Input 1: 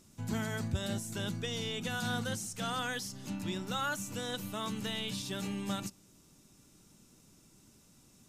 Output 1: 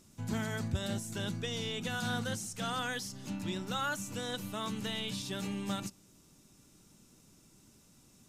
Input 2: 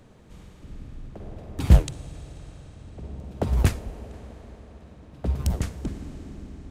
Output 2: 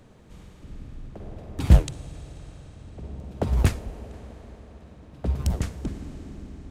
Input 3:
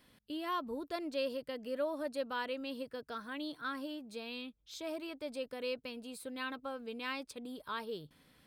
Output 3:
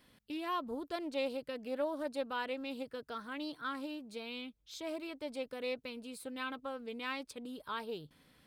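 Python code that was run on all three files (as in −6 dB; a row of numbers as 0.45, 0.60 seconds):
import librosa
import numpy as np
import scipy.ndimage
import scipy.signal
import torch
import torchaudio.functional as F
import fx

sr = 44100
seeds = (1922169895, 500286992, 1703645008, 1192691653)

y = fx.doppler_dist(x, sr, depth_ms=0.12)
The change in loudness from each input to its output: 0.0, 0.0, 0.0 LU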